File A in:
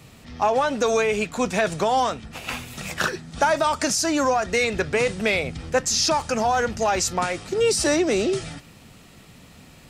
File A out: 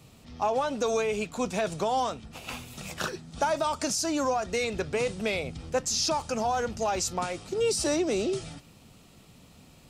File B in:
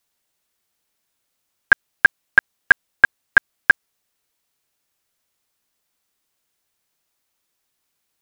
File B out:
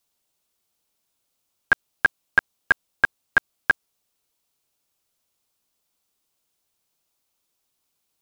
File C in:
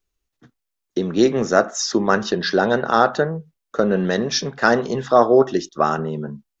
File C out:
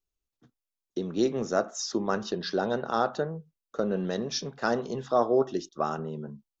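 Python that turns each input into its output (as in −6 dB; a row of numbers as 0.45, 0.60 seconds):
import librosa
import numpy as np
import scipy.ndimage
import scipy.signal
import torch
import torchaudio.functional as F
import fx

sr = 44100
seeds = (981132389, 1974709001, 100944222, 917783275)

y = fx.peak_eq(x, sr, hz=1800.0, db=-7.0, octaves=0.69)
y = y * 10.0 ** (-30 / 20.0) / np.sqrt(np.mean(np.square(y)))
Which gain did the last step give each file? −6.0, −1.0, −9.5 decibels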